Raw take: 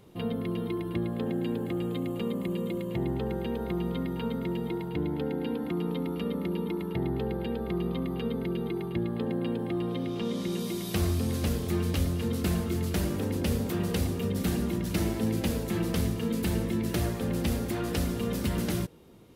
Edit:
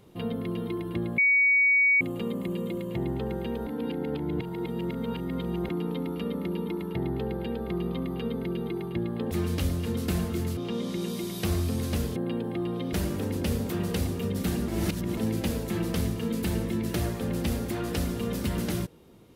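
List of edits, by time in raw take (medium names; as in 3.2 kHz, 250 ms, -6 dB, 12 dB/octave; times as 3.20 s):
1.18–2.01 s: bleep 2.25 kHz -18 dBFS
3.67–5.69 s: reverse
9.31–10.08 s: swap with 11.67–12.93 s
14.68–15.17 s: reverse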